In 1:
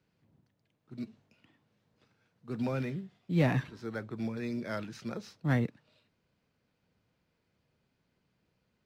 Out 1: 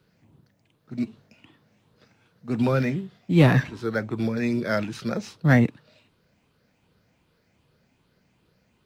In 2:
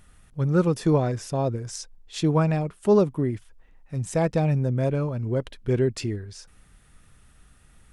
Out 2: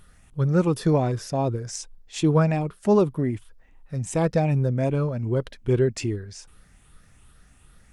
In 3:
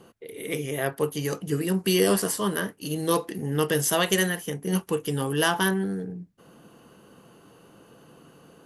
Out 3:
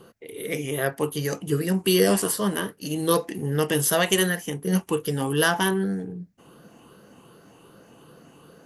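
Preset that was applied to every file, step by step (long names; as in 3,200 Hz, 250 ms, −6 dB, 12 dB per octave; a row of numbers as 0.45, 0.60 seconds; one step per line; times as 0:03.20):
rippled gain that drifts along the octave scale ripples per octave 0.63, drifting +2.6 Hz, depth 6 dB
loudness normalisation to −24 LKFS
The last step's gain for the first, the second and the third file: +10.5, +0.5, +1.0 decibels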